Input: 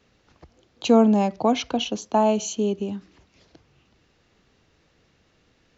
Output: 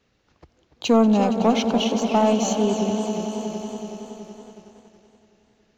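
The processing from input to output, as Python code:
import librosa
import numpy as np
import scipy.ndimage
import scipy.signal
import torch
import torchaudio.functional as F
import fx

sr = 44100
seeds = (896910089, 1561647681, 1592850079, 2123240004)

y = fx.echo_swell(x, sr, ms=93, loudest=5, wet_db=-16.0)
y = fx.leveller(y, sr, passes=1)
y = fx.echo_warbled(y, sr, ms=290, feedback_pct=36, rate_hz=2.8, cents=199, wet_db=-11.5)
y = F.gain(torch.from_numpy(y), -2.5).numpy()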